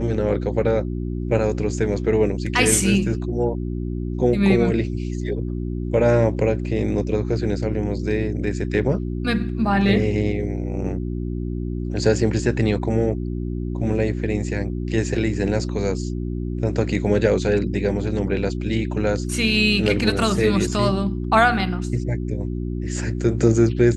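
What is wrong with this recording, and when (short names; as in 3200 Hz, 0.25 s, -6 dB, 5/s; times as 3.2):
hum 60 Hz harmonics 6 -26 dBFS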